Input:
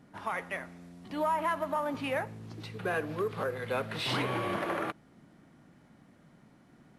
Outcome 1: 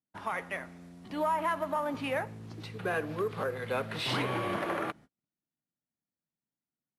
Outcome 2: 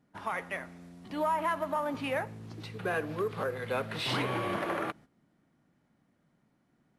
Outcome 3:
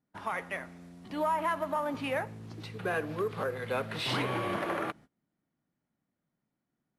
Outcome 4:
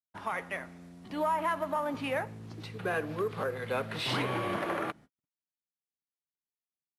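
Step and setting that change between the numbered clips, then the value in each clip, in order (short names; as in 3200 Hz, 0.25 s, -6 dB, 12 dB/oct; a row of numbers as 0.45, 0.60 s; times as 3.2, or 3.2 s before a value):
gate, range: -39, -12, -25, -57 dB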